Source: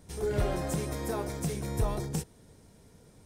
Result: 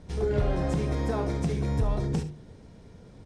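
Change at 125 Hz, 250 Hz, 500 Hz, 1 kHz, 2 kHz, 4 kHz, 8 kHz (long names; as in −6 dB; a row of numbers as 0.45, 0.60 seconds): +5.5, +5.0, +3.0, +2.0, +1.5, −0.5, −8.0 decibels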